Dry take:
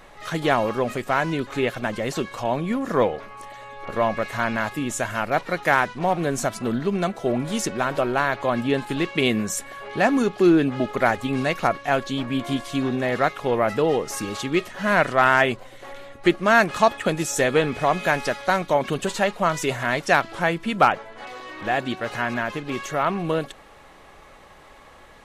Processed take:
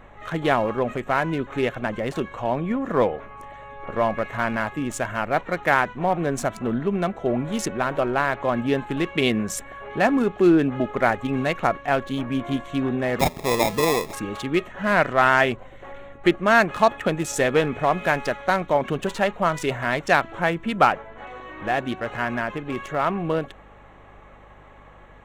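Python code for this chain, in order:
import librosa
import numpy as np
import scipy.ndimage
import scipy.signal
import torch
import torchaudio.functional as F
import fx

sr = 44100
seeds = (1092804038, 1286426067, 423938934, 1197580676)

y = fx.wiener(x, sr, points=9)
y = fx.sample_hold(y, sr, seeds[0], rate_hz=1500.0, jitter_pct=0, at=(13.19, 14.13))
y = fx.add_hum(y, sr, base_hz=50, snr_db=29)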